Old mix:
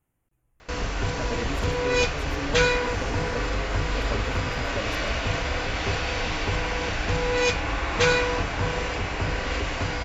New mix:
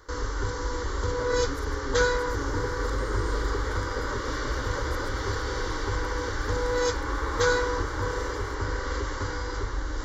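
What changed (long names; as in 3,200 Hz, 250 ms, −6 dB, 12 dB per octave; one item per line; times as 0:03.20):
first sound: entry −0.60 s
second sound +10.0 dB
master: add phaser with its sweep stopped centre 690 Hz, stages 6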